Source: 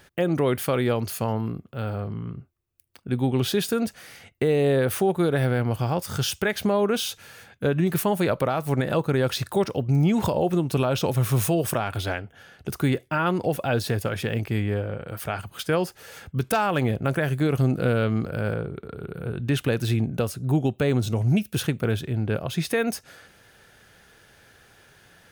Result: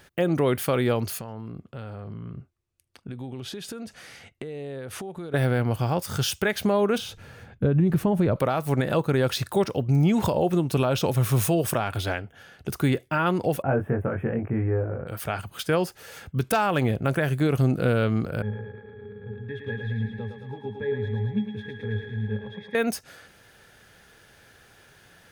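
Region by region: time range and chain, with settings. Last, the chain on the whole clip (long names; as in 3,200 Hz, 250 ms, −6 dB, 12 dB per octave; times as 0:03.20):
0:01.19–0:05.34: low-pass filter 9,400 Hz + downward compressor 12 to 1, threshold −32 dBFS
0:06.98–0:08.36: spectral tilt −3.5 dB per octave + downward compressor 3 to 1, threshold −18 dBFS
0:13.62–0:15.07: Butterworth band-reject 4,300 Hz, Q 0.55 + high-frequency loss of the air 400 metres + double-tracking delay 22 ms −3 dB
0:18.42–0:22.75: parametric band 2,000 Hz +13 dB 1.3 octaves + resonances in every octave G#, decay 0.15 s + feedback echo with a high-pass in the loop 109 ms, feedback 76%, high-pass 380 Hz, level −4 dB
whole clip: no processing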